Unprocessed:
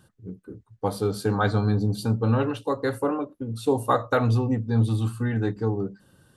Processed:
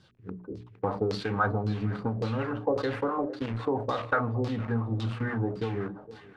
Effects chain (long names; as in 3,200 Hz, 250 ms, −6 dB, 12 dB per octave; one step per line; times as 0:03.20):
variable-slope delta modulation 64 kbit/s
mains-hum notches 60/120/180/240/300/360/420 Hz
in parallel at −8 dB: bit reduction 5 bits
on the sum: downward compressor 5 to 1, threshold −25 dBFS, peak gain reduction 11 dB
on a send: feedback echo with a high-pass in the loop 460 ms, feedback 69%, high-pass 380 Hz, level −18 dB
on the sum: auto-filter low-pass saw down 1.8 Hz 510–4,900 Hz
two-band tremolo in antiphase 5.9 Hz, depth 50%, crossover 590 Hz
level that may fall only so fast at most 95 dB per second